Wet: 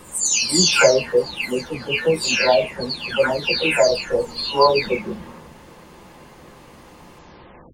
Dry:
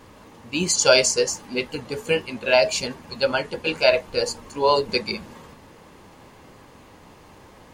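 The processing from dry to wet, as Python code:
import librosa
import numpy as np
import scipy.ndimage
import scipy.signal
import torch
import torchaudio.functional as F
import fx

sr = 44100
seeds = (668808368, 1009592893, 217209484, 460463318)

y = fx.spec_delay(x, sr, highs='early', ms=551)
y = F.gain(torch.from_numpy(y), 5.0).numpy()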